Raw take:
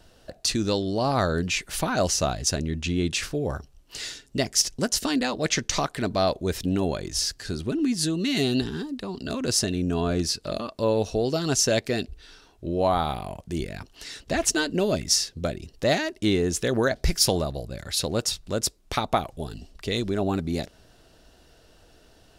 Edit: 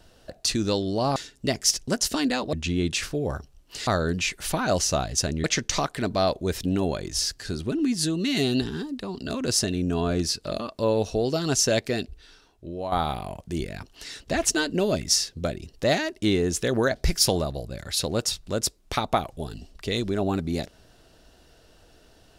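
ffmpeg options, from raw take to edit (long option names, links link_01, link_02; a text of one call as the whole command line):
ffmpeg -i in.wav -filter_complex "[0:a]asplit=6[link_01][link_02][link_03][link_04][link_05][link_06];[link_01]atrim=end=1.162[link_07];[link_02]atrim=start=4.068:end=5.442[link_08];[link_03]atrim=start=2.728:end=4.072[link_09];[link_04]atrim=start=1.158:end=2.732[link_10];[link_05]atrim=start=5.438:end=12.92,asetpts=PTS-STARTPTS,afade=type=out:start_time=6.402:duration=1.08:silence=0.298538[link_11];[link_06]atrim=start=12.92,asetpts=PTS-STARTPTS,afade=type=in:duration=0.004:curve=hsin:silence=0.298538[link_12];[link_07][link_08]acrossfade=duration=0.004:curve1=hsin:curve2=hsin[link_13];[link_13][link_09]acrossfade=duration=0.004:curve1=hsin:curve2=hsin[link_14];[link_14][link_10]acrossfade=duration=0.004:curve1=hsin:curve2=hsin[link_15];[link_11][link_12]concat=n=2:v=0:a=1[link_16];[link_15][link_16]acrossfade=duration=0.004:curve1=hsin:curve2=hsin" out.wav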